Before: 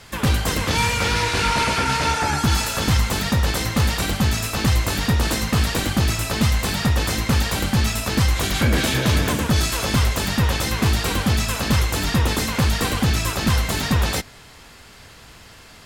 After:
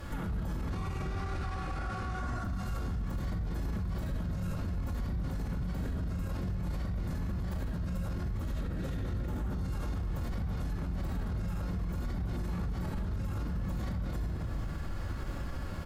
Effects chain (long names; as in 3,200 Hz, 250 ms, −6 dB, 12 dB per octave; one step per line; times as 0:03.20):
single-tap delay 77 ms −10 dB
downward compressor 6 to 1, threshold −33 dBFS, peak gain reduction 17.5 dB
flat-topped bell 5,000 Hz −10.5 dB 2.9 octaves
notch filter 1,000 Hz, Q 21
phase-vocoder pitch shift with formants kept −3.5 semitones
low-shelf EQ 210 Hz +10 dB
rectangular room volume 2,800 cubic metres, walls mixed, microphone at 2.3 metres
brickwall limiter −28 dBFS, peak gain reduction 16.5 dB